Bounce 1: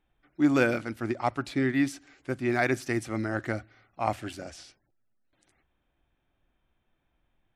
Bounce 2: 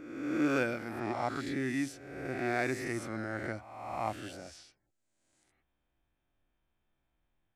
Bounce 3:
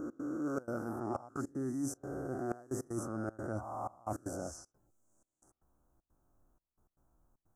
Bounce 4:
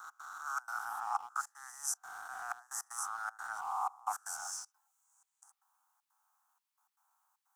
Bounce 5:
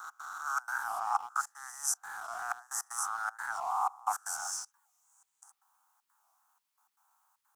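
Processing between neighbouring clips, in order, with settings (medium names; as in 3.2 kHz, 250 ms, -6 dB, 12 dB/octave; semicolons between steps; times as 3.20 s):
reverse spectral sustain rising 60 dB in 1.24 s; trim -9 dB
elliptic band-stop 1.3–6.2 kHz, stop band 50 dB; trance gate "x.xxxx.xxxxx.." 155 bpm -24 dB; reverse; compression 10:1, threshold -42 dBFS, peak gain reduction 16 dB; reverse; trim +8 dB
steep high-pass 790 Hz 96 dB/octave; in parallel at -10.5 dB: small samples zeroed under -52 dBFS; on the sum: trim +7 dB
warped record 45 rpm, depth 160 cents; trim +4.5 dB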